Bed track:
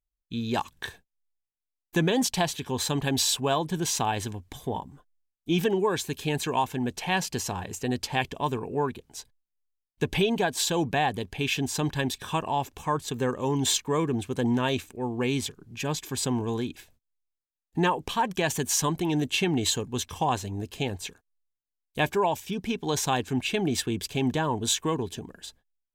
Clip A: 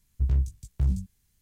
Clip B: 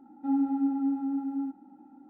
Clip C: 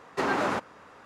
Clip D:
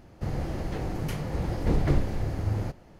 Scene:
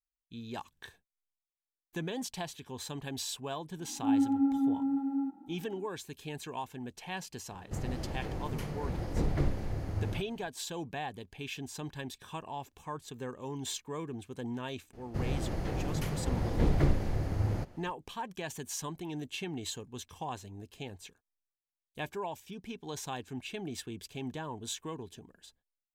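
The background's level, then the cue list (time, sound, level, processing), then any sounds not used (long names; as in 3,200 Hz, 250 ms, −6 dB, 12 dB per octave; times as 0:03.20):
bed track −13 dB
0:03.79: mix in B −0.5 dB
0:07.50: mix in D −6 dB
0:14.93: mix in D −2.5 dB
not used: A, C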